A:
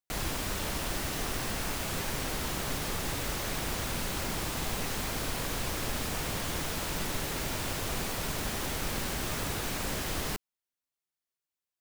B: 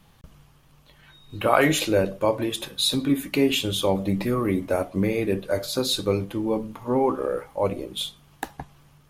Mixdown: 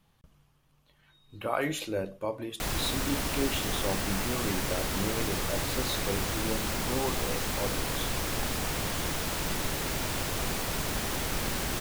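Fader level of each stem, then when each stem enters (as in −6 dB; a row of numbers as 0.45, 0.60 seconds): +2.0, −11.0 decibels; 2.50, 0.00 seconds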